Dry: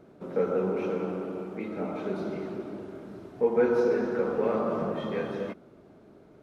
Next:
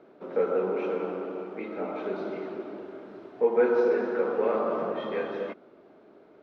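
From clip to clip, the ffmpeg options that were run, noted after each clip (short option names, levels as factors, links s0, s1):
-filter_complex "[0:a]acrossover=split=260 4600:gain=0.126 1 0.0891[s0][s1][s2];[s0][s1][s2]amix=inputs=3:normalize=0,volume=1.26"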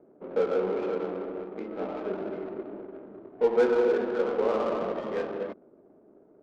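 -af "adynamicsmooth=sensitivity=3.5:basefreq=570"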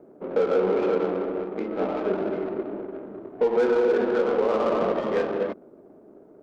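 -af "alimiter=limit=0.0944:level=0:latency=1:release=142,volume=2.24"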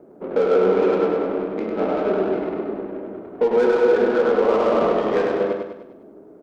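-af "aecho=1:1:100|200|300|400|500|600:0.631|0.303|0.145|0.0698|0.0335|0.0161,volume=1.41"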